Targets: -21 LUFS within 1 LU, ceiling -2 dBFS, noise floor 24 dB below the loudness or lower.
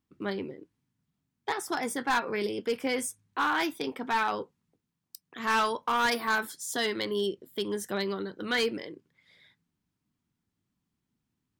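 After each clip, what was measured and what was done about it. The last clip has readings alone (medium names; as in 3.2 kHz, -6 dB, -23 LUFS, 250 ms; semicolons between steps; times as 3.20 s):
clipped samples 0.7%; clipping level -21.0 dBFS; loudness -30.5 LUFS; peak level -21.0 dBFS; loudness target -21.0 LUFS
-> clip repair -21 dBFS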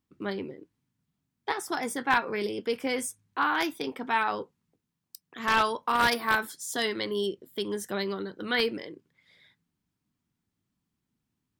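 clipped samples 0.0%; loudness -29.0 LUFS; peak level -12.0 dBFS; loudness target -21.0 LUFS
-> trim +8 dB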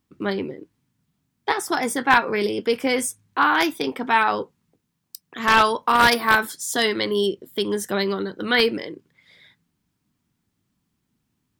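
loudness -21.0 LUFS; peak level -4.0 dBFS; noise floor -75 dBFS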